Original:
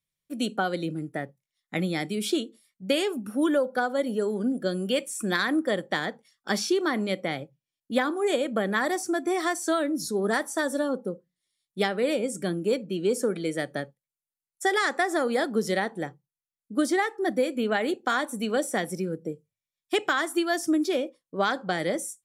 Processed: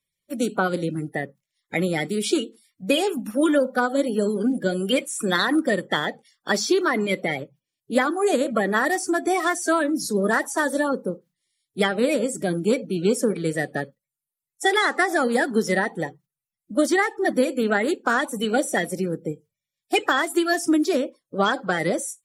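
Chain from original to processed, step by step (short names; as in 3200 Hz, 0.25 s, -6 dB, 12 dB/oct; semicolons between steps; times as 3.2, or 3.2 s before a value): bin magnitudes rounded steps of 30 dB; gain +5 dB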